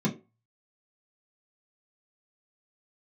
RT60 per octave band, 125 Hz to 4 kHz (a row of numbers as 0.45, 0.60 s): 0.25, 0.25, 0.35, 0.25, 0.25, 0.20 s